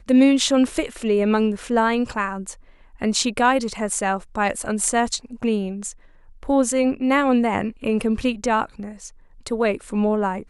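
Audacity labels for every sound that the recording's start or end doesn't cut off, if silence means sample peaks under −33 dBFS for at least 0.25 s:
3.020000	5.920000	sound
6.430000	9.080000	sound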